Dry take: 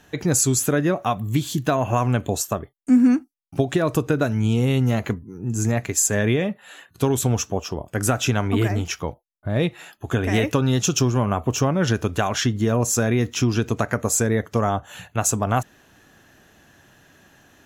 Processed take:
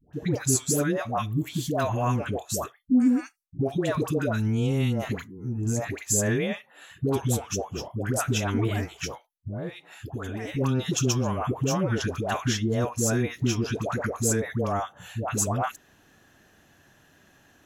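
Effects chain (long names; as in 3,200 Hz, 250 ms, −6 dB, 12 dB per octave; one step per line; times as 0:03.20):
0:08.93–0:10.56: downward compressor 6 to 1, threshold −25 dBFS, peak gain reduction 9.5 dB
all-pass dispersion highs, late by 133 ms, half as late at 710 Hz
level −5 dB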